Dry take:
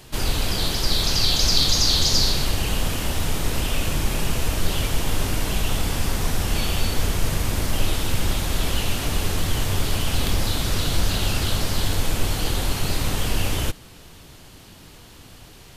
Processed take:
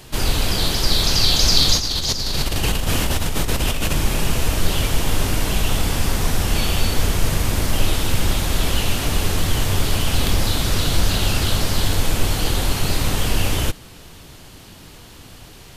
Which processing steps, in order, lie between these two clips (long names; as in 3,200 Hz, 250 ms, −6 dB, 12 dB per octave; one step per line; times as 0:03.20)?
0:01.77–0:03.96: compressor whose output falls as the input rises −23 dBFS, ratio −1
level +3.5 dB